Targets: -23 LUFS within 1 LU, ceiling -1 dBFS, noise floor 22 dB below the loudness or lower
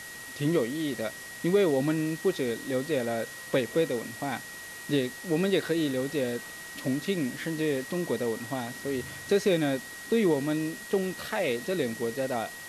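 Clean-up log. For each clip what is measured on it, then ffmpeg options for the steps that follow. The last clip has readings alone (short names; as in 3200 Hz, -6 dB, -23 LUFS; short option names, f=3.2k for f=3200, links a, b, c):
steady tone 1900 Hz; tone level -42 dBFS; noise floor -42 dBFS; noise floor target -52 dBFS; loudness -29.5 LUFS; peak -13.5 dBFS; loudness target -23.0 LUFS
-> -af "bandreject=f=1.9k:w=30"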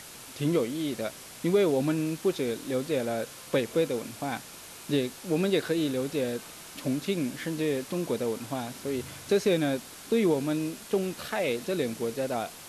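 steady tone none; noise floor -46 dBFS; noise floor target -52 dBFS
-> -af "afftdn=nr=6:nf=-46"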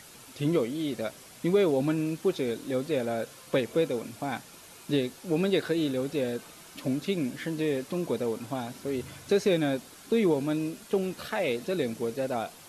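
noise floor -50 dBFS; noise floor target -52 dBFS
-> -af "afftdn=nr=6:nf=-50"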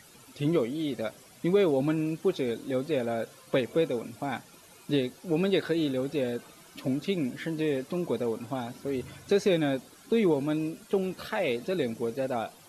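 noise floor -54 dBFS; loudness -29.5 LUFS; peak -13.5 dBFS; loudness target -23.0 LUFS
-> -af "volume=6.5dB"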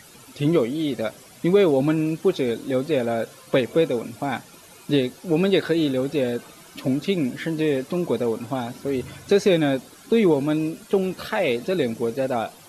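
loudness -23.0 LUFS; peak -7.0 dBFS; noise floor -48 dBFS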